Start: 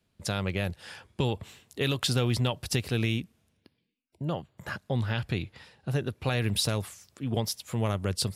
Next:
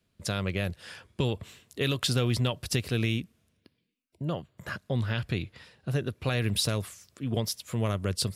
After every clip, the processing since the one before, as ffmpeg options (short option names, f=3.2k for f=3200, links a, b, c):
-af "equalizer=f=830:t=o:w=0.21:g=-8.5"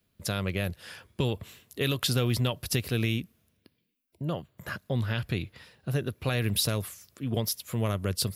-af "aexciter=amount=4.2:drive=1.5:freq=11k"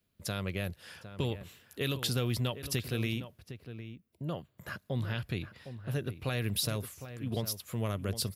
-filter_complex "[0:a]asplit=2[a][b];[b]adelay=758,volume=-11dB,highshelf=f=4k:g=-17.1[c];[a][c]amix=inputs=2:normalize=0,volume=-5dB"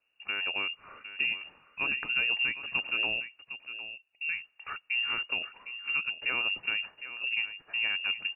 -af "lowpass=f=2.5k:t=q:w=0.5098,lowpass=f=2.5k:t=q:w=0.6013,lowpass=f=2.5k:t=q:w=0.9,lowpass=f=2.5k:t=q:w=2.563,afreqshift=-2900,volume=2.5dB"